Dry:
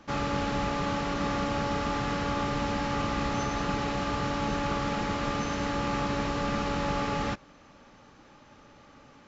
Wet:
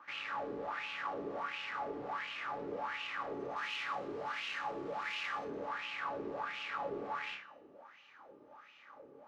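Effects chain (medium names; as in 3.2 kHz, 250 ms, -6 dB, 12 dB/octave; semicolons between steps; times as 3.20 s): 3.56–5.45 s: treble shelf 2.4 kHz +8.5 dB; flutter echo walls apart 5 m, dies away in 0.29 s; saturation -33 dBFS, distortion -8 dB; wah-wah 1.4 Hz 380–2800 Hz, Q 5.2; de-hum 213.3 Hz, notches 40; trim +7.5 dB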